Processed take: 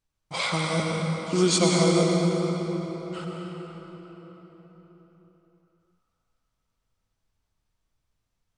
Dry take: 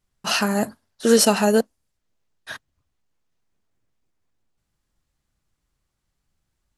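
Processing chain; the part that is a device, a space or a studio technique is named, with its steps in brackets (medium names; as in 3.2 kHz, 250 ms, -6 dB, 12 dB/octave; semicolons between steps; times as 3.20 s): slowed and reverbed (tape speed -21%; reverberation RT60 4.6 s, pre-delay 87 ms, DRR -1 dB); trim -6.5 dB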